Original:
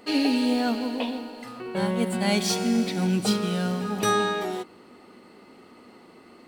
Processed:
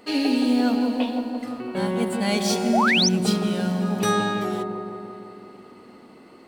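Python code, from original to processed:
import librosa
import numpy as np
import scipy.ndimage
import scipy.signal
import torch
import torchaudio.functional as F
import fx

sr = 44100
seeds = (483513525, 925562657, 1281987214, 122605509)

y = fx.echo_wet_lowpass(x, sr, ms=170, feedback_pct=68, hz=960.0, wet_db=-4)
y = fx.spec_paint(y, sr, seeds[0], shape='rise', start_s=2.73, length_s=0.36, low_hz=570.0, high_hz=6400.0, level_db=-20.0)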